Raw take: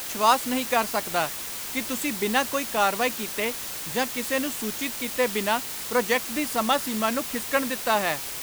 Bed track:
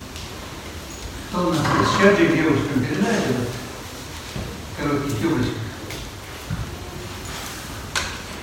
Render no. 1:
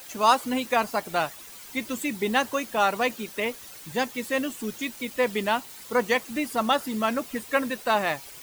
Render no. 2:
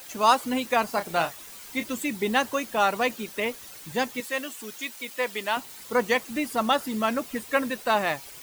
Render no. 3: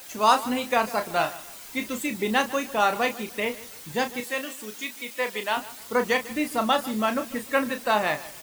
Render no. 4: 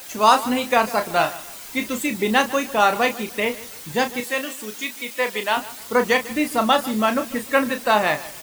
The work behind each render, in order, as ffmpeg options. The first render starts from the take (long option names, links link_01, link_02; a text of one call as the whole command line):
ffmpeg -i in.wav -af "afftdn=noise_reduction=12:noise_floor=-34" out.wav
ffmpeg -i in.wav -filter_complex "[0:a]asettb=1/sr,asplit=3[link_01][link_02][link_03];[link_01]atrim=end=0.864[link_04];[link_02]atrim=start=0.86:end=1.84,asetpts=PTS-STARTPTS,afade=type=in:duration=0.004:curve=qsin,afade=type=out:start_time=0.976:duration=0.004:curve=qsin,asplit=2[link_05][link_06];[link_06]adelay=30,volume=-9dB[link_07];[link_05][link_07]amix=inputs=2:normalize=0,atrim=end_sample=43218[link_08];[link_03]atrim=start=1.836[link_09];[link_04][link_08]acrossfade=duration=0.004:curve1=hsin:curve2=qsin[link_10];[link_10][link_09]acrossfade=duration=0.004:curve1=qsin:curve2=hsin,asettb=1/sr,asplit=3[link_11][link_12][link_13];[link_11]atrim=end=4.204[link_14];[link_12]atrim=start=4.2:end=5.57,asetpts=PTS-STARTPTS,afade=type=in:duration=0.004:curve=qsin,afade=type=out:start_time=1.366:duration=0.004:curve=qsin,highpass=frequency=750:poles=1[link_15];[link_13]atrim=start=5.566[link_16];[link_14][link_15]acrossfade=duration=0.004:curve1=hsin:curve2=qsin[link_17];[link_17][link_16]acrossfade=duration=0.004:curve1=qsin:curve2=hsin" out.wav
ffmpeg -i in.wav -filter_complex "[0:a]asplit=2[link_01][link_02];[link_02]adelay=33,volume=-8.5dB[link_03];[link_01][link_03]amix=inputs=2:normalize=0,aecho=1:1:149|298|447:0.126|0.0403|0.0129" out.wav
ffmpeg -i in.wav -af "volume=5dB,alimiter=limit=-3dB:level=0:latency=1" out.wav